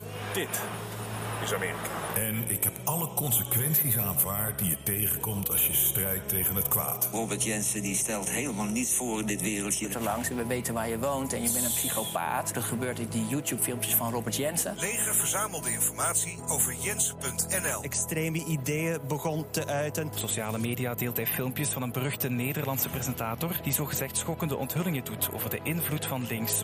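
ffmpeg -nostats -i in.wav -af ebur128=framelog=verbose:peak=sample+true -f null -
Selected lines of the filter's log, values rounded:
Integrated loudness:
  I:         -28.1 LUFS
  Threshold: -38.1 LUFS
Loudness range:
  LRA:         4.5 LU
  Threshold: -47.8 LUFS
  LRA low:   -30.1 LUFS
  LRA high:  -25.5 LUFS
Sample peak:
  Peak:      -11.0 dBFS
True peak:
  Peak:       -9.7 dBFS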